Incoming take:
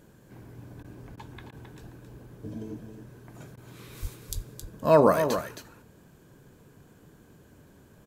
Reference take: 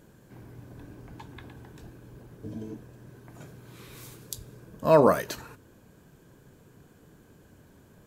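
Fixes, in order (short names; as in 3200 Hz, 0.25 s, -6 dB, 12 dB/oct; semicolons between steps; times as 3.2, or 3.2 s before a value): 4.01–4.13 HPF 140 Hz 24 dB/oct; 4.34–4.46 HPF 140 Hz 24 dB/oct; interpolate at 0.83/1.16/1.51/3.56, 12 ms; inverse comb 0.268 s -8.5 dB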